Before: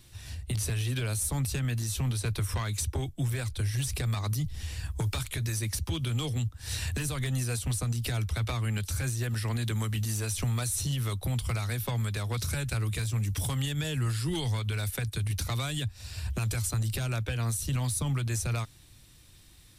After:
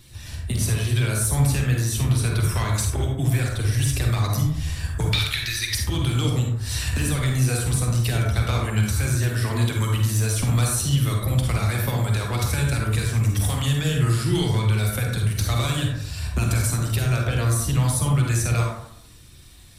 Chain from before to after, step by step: coarse spectral quantiser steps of 15 dB; 5.13–5.75 s: graphic EQ 125/250/500/1000/2000/4000/8000 Hz -11/-11/-10/-6/+5/+12/-7 dB; reverberation RT60 0.75 s, pre-delay 37 ms, DRR -0.5 dB; trim +5.5 dB

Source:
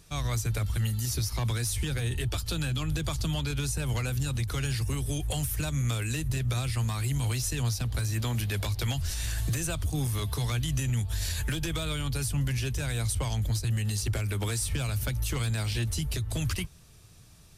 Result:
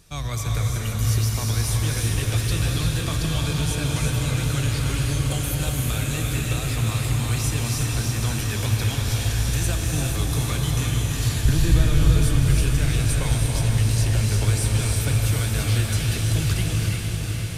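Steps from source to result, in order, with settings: 11.45–12.22 s: tilt EQ -3 dB/octave; echo that smears into a reverb 476 ms, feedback 73%, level -5 dB; gated-style reverb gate 380 ms rising, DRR 0 dB; trim +1.5 dB

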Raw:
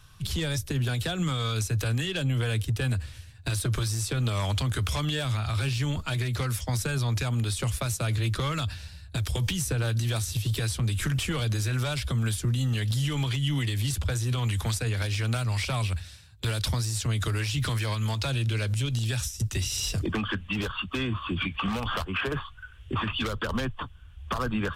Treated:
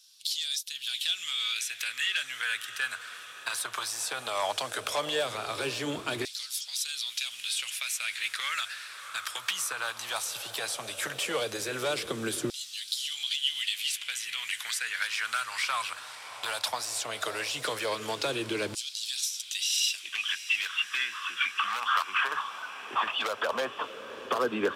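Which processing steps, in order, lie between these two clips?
echo that smears into a reverb 647 ms, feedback 69%, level -14 dB; LFO high-pass saw down 0.16 Hz 320–4800 Hz

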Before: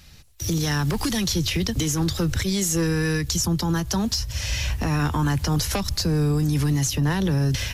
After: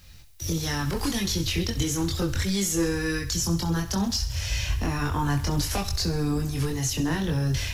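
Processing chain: chorus voices 6, 0.33 Hz, delay 23 ms, depth 2.2 ms; thinning echo 66 ms, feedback 56%, high-pass 420 Hz, level -12.5 dB; added noise blue -65 dBFS

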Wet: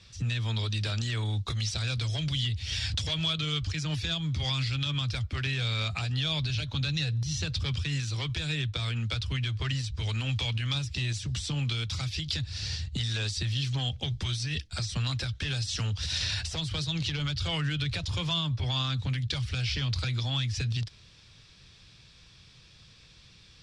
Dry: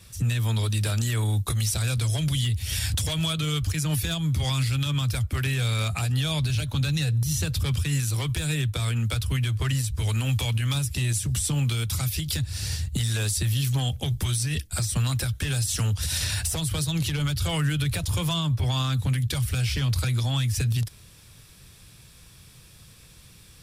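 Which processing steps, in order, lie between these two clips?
low-pass 4.9 kHz 24 dB/octave; treble shelf 3 kHz +11.5 dB; trim -6 dB

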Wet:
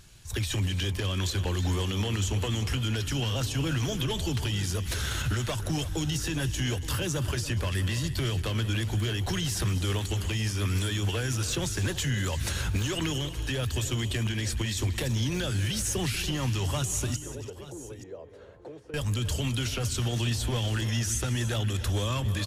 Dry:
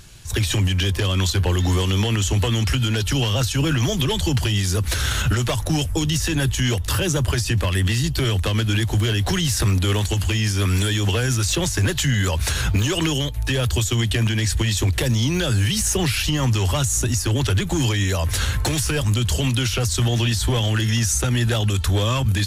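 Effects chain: 17.16–18.94 s: band-pass filter 470 Hz, Q 3.9; multi-tap echo 190/283/337/874 ms -18/-15.5/-15.5/-16 dB; trim -9 dB

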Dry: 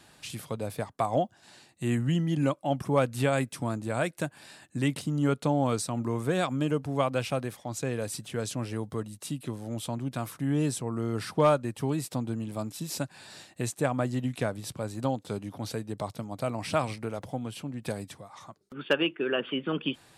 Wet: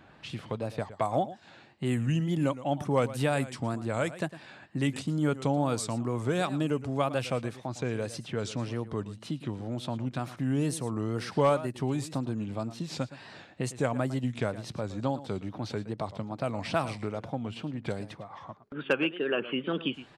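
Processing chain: level-controlled noise filter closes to 2 kHz, open at -23 dBFS; delay 111 ms -16 dB; wow and flutter 110 cents; in parallel at +1 dB: compression, threshold -38 dBFS, peak gain reduction 19 dB; on the sum: trim -3 dB

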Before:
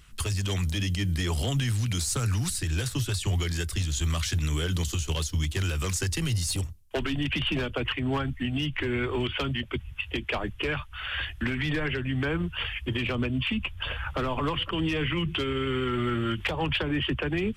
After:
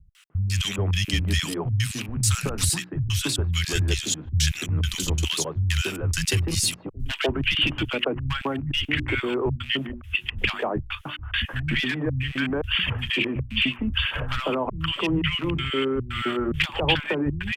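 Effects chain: rattle on loud lows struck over -29 dBFS, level -36 dBFS; peaking EQ 2.9 kHz +2.5 dB; hum notches 60/120/180/240/300/360 Hz; in parallel at +2.5 dB: level held to a coarse grid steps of 17 dB; on the sum: trance gate "x...xxx..xxx.xx" 173 bpm -60 dB; word length cut 12-bit, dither none; three bands offset in time lows, highs, mids 150/300 ms, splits 170/1200 Hz; trim +2 dB; Opus 128 kbps 48 kHz

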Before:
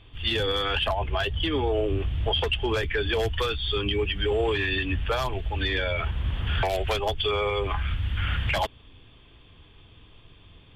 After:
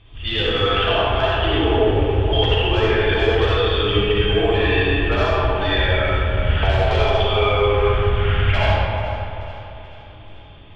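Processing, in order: low-pass 4.7 kHz 12 dB/octave; peaking EQ 100 Hz +4 dB 0.37 oct; two-band feedback delay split 370 Hz, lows 233 ms, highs 434 ms, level -15 dB; reverberation RT60 2.8 s, pre-delay 20 ms, DRR -7.5 dB

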